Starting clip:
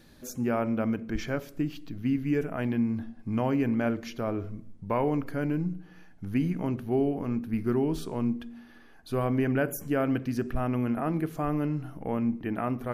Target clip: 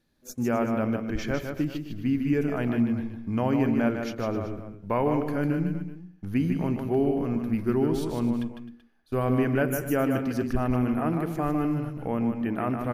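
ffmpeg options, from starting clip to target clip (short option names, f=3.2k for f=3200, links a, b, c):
-af "agate=range=-18dB:threshold=-39dB:ratio=16:detection=peak,aecho=1:1:152|260|382:0.501|0.158|0.15,volume=1.5dB"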